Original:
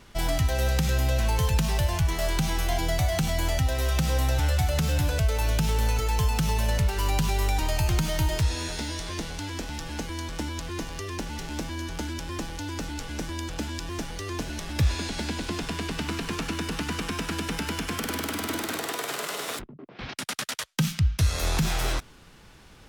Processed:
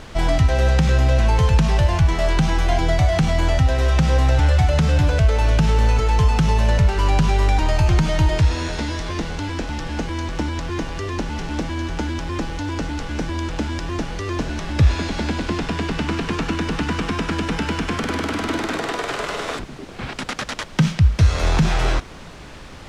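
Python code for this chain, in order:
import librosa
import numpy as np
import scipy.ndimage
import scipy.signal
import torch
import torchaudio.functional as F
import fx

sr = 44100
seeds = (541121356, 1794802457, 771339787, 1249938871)

p1 = fx.sample_hold(x, sr, seeds[0], rate_hz=5600.0, jitter_pct=0)
p2 = x + (p1 * 10.0 ** (-8.0 / 20.0))
p3 = fx.dmg_noise_colour(p2, sr, seeds[1], colour='pink', level_db=-44.0)
p4 = fx.air_absorb(p3, sr, metres=88.0)
y = p4 * 10.0 ** (5.5 / 20.0)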